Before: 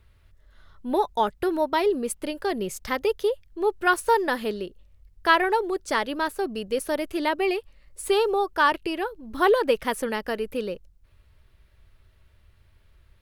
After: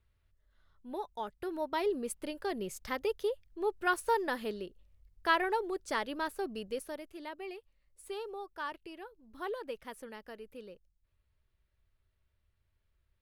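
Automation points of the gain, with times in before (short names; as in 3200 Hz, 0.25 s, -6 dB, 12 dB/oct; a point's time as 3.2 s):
1.24 s -16 dB
1.86 s -9 dB
6.66 s -9 dB
7.08 s -19 dB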